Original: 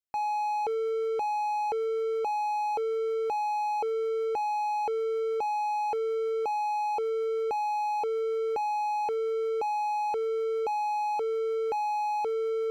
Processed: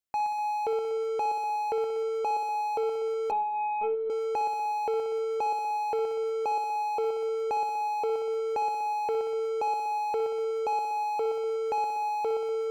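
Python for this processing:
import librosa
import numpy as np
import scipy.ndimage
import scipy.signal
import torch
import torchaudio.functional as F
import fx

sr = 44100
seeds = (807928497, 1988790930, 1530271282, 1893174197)

y = fx.echo_heads(x, sr, ms=61, heads='first and second', feedback_pct=60, wet_db=-11)
y = fx.lpc_vocoder(y, sr, seeds[0], excitation='pitch_kept', order=16, at=(3.31, 4.1))
y = y * 10.0 ** (1.5 / 20.0)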